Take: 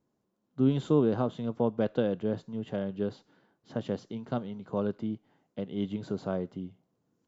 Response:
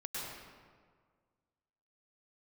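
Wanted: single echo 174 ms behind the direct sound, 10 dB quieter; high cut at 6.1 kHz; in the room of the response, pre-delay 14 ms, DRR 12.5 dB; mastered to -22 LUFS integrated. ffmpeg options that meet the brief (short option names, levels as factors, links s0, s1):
-filter_complex "[0:a]lowpass=6100,aecho=1:1:174:0.316,asplit=2[s0][s1];[1:a]atrim=start_sample=2205,adelay=14[s2];[s1][s2]afir=irnorm=-1:irlink=0,volume=0.2[s3];[s0][s3]amix=inputs=2:normalize=0,volume=2.82"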